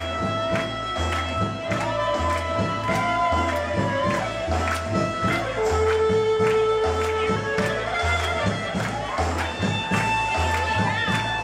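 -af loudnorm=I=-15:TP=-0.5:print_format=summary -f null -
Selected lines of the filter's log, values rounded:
Input Integrated:    -23.3 LUFS
Input True Peak:      -9.7 dBTP
Input LRA:             1.7 LU
Input Threshold:     -33.3 LUFS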